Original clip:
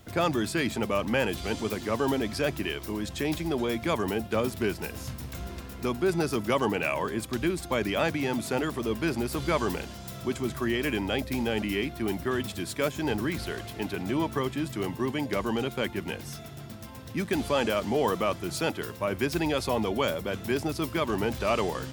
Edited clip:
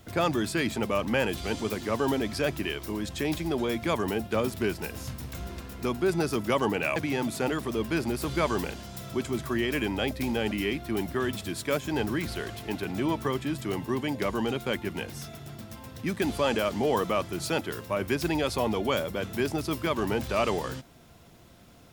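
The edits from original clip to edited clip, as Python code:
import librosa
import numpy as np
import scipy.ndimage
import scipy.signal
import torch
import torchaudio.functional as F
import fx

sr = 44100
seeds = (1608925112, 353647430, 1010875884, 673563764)

y = fx.edit(x, sr, fx.cut(start_s=6.96, length_s=1.11), tone=tone)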